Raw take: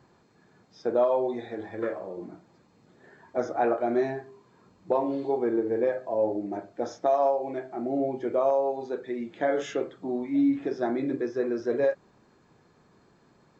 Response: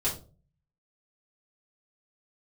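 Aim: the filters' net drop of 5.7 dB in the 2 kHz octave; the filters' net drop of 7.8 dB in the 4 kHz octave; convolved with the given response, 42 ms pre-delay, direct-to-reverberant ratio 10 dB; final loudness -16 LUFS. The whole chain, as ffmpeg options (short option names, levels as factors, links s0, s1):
-filter_complex "[0:a]equalizer=f=2000:t=o:g=-6,equalizer=f=4000:t=o:g=-8.5,asplit=2[s0][s1];[1:a]atrim=start_sample=2205,adelay=42[s2];[s1][s2]afir=irnorm=-1:irlink=0,volume=0.141[s3];[s0][s3]amix=inputs=2:normalize=0,volume=3.98"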